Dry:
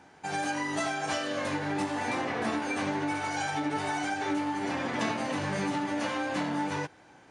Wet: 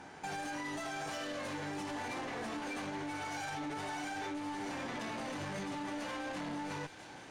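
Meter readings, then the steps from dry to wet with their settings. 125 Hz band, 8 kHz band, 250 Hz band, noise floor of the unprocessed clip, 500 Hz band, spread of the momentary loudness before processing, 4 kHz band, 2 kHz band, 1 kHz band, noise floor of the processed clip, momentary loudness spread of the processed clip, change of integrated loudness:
−9.0 dB, −7.5 dB, −9.5 dB, −56 dBFS, −9.0 dB, 1 LU, −7.0 dB, −8.5 dB, −9.0 dB, −51 dBFS, 1 LU, −9.0 dB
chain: brickwall limiter −27.5 dBFS, peak gain reduction 8.5 dB
downward compressor 6 to 1, threshold −40 dBFS, peak gain reduction 8 dB
harmonic generator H 4 −15 dB, 6 −15 dB, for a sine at −31 dBFS
soft clipping −38 dBFS, distortion −17 dB
delay with a high-pass on its return 660 ms, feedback 68%, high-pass 2,900 Hz, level −7.5 dB
level +4.5 dB

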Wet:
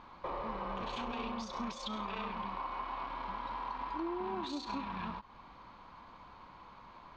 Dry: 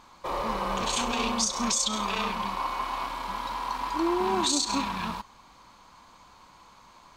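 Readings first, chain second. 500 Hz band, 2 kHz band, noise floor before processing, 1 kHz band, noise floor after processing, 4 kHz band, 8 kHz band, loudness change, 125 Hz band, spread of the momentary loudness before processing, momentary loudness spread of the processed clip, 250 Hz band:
−10.0 dB, −11.0 dB, −55 dBFS, −9.5 dB, −56 dBFS, −16.5 dB, −29.5 dB, −11.5 dB, −8.0 dB, 8 LU, 16 LU, −9.5 dB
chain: high-frequency loss of the air 310 metres
downward compressor 3 to 1, threshold −41 dBFS, peak gain reduction 13 dB
every ending faded ahead of time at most 390 dB per second
level +1.5 dB

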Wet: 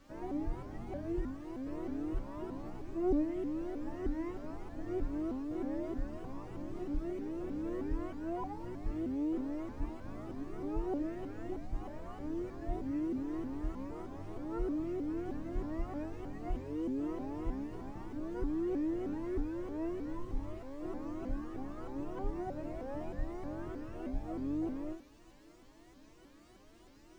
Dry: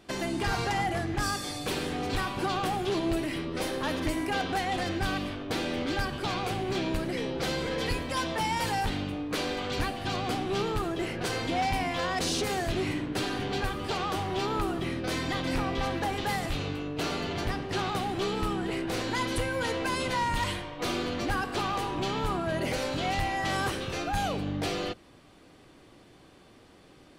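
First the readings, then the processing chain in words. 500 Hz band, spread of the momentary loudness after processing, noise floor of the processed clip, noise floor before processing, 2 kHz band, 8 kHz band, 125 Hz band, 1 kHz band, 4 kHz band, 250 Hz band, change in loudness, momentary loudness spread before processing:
−8.5 dB, 8 LU, −59 dBFS, −55 dBFS, −23.5 dB, below −25 dB, −11.5 dB, −17.5 dB, below −30 dB, −4.0 dB, −9.0 dB, 3 LU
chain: linear delta modulator 16 kbit/s, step −43.5 dBFS
spectral tilt −3 dB per octave
notch comb filter 210 Hz
background noise violet −40 dBFS
high-frequency loss of the air 150 metres
resonators tuned to a chord A3 sus4, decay 0.35 s
pitch modulation by a square or saw wave saw up 3.2 Hz, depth 250 cents
level +6 dB

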